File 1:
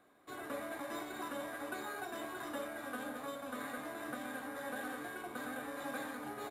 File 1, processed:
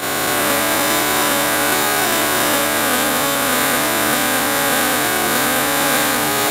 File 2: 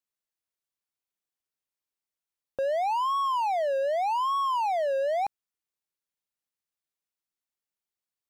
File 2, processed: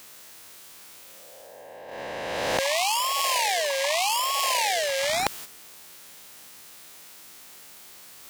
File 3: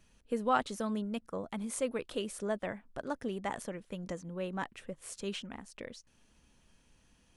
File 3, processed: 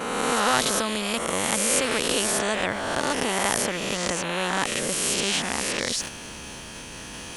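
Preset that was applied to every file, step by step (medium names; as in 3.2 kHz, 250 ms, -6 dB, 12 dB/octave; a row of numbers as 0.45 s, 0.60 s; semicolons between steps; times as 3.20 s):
reverse spectral sustain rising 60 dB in 1.18 s; reverse; upward compressor, threshold -37 dBFS; reverse; high-pass 120 Hz 6 dB/octave; gate -50 dBFS, range -8 dB; spectrum-flattening compressor 2:1; peak normalisation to -3 dBFS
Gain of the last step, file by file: +23.5 dB, +11.5 dB, +10.0 dB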